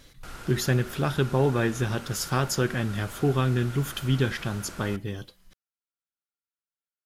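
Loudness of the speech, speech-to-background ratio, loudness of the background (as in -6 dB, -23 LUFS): -27.0 LUFS, 15.5 dB, -42.5 LUFS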